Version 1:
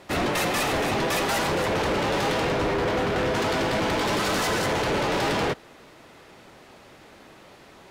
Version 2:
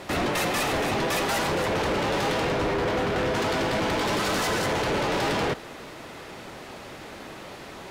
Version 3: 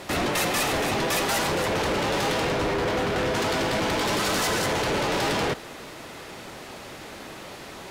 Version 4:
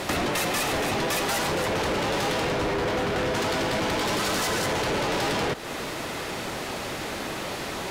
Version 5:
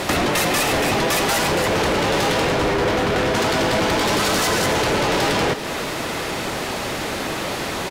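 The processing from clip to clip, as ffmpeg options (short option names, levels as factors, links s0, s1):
-af "alimiter=level_in=2.11:limit=0.0631:level=0:latency=1:release=19,volume=0.473,volume=2.66"
-af "equalizer=f=13000:t=o:w=2.3:g=5"
-af "acompressor=threshold=0.0178:ratio=4,volume=2.66"
-af "aecho=1:1:282:0.224,volume=2.11"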